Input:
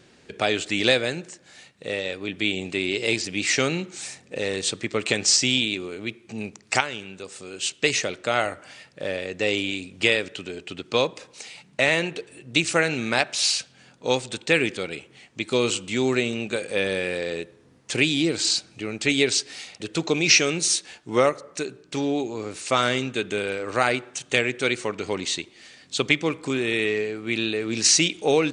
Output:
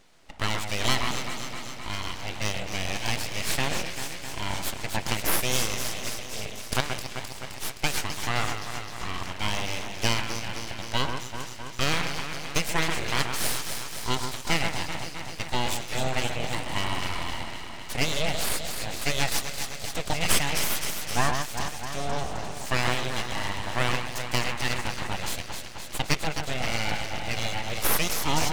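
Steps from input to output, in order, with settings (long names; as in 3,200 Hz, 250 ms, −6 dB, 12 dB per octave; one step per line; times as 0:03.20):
delay that swaps between a low-pass and a high-pass 130 ms, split 2,000 Hz, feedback 83%, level −5 dB
full-wave rectification
level −3 dB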